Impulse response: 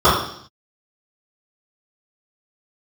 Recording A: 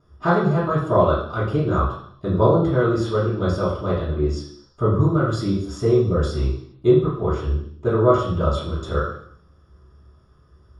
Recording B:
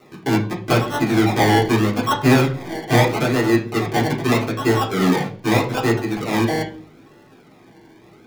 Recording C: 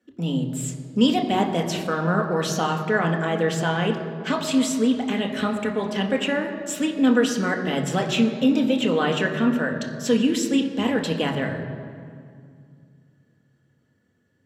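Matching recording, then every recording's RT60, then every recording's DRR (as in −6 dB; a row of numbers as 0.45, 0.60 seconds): A; 0.65, 0.45, 2.2 seconds; −17.5, −3.5, 2.0 decibels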